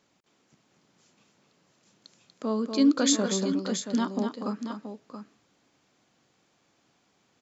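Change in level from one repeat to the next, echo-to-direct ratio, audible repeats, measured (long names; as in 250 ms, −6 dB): repeats not evenly spaced, −5.0 dB, 2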